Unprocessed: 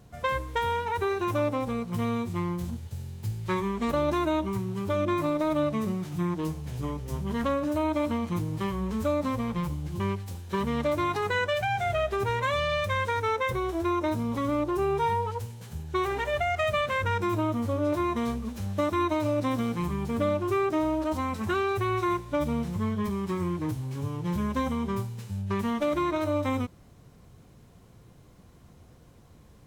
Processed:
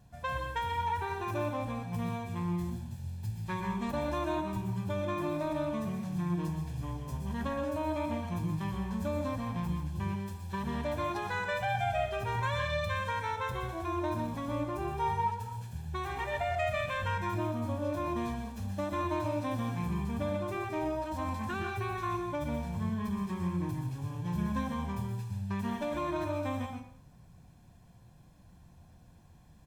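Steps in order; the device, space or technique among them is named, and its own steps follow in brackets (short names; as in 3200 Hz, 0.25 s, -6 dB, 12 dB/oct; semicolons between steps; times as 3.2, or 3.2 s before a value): microphone above a desk (comb 1.2 ms, depth 56%; reverb RT60 0.60 s, pre-delay 0.113 s, DRR 3 dB); gain -8 dB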